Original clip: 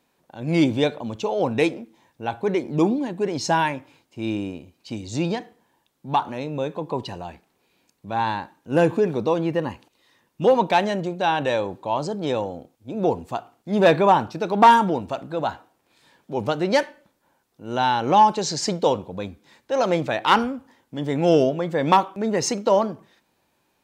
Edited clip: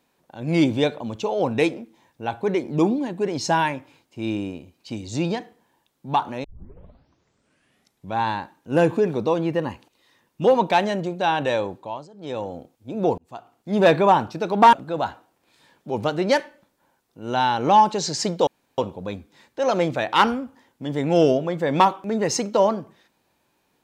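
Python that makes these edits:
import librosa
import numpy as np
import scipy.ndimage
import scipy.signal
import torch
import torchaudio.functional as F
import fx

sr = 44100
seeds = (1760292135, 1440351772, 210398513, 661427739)

y = fx.edit(x, sr, fx.tape_start(start_s=6.44, length_s=1.72),
    fx.fade_down_up(start_s=11.65, length_s=0.91, db=-20.5, fade_s=0.43),
    fx.fade_in_span(start_s=13.18, length_s=0.52),
    fx.cut(start_s=14.73, length_s=0.43),
    fx.insert_room_tone(at_s=18.9, length_s=0.31), tone=tone)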